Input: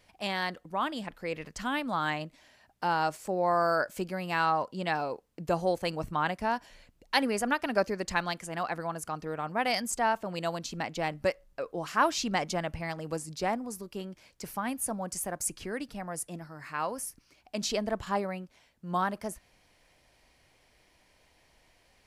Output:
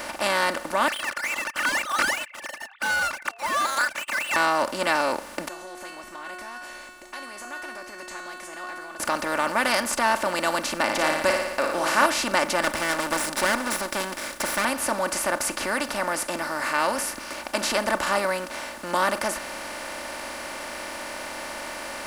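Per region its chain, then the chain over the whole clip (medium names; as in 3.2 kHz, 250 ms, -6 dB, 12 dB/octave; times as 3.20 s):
0.88–4.36 s: formants replaced by sine waves + steep high-pass 1.2 kHz 48 dB/octave + waveshaping leveller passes 3
5.48–9.00 s: compression 4:1, threshold -41 dBFS + inharmonic resonator 360 Hz, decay 0.57 s, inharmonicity 0.002
10.84–12.06 s: doubling 39 ms -11 dB + flutter echo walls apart 9.9 m, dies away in 0.45 s
12.62–14.65 s: comb filter that takes the minimum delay 0.54 ms + treble shelf 4.9 kHz +8 dB
whole clip: spectral levelling over time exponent 0.4; bass shelf 160 Hz -10.5 dB; comb 3.4 ms, depth 50%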